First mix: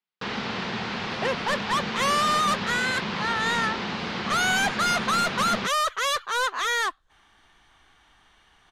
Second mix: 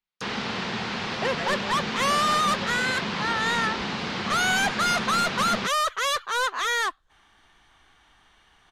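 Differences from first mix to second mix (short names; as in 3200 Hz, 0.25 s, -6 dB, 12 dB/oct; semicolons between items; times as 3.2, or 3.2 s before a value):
speech: unmuted; first sound: remove air absorption 55 m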